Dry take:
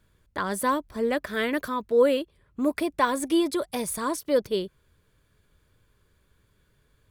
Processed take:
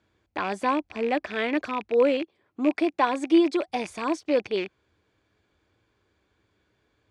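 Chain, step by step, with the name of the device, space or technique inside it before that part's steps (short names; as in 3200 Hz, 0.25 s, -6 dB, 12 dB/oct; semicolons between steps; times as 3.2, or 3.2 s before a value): 2.22–3.68 HPF 160 Hz 12 dB/oct; car door speaker with a rattle (rattling part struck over -45 dBFS, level -24 dBFS; speaker cabinet 89–6600 Hz, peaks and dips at 150 Hz -10 dB, 320 Hz +8 dB, 760 Hz +10 dB, 2300 Hz +4 dB); gain -2.5 dB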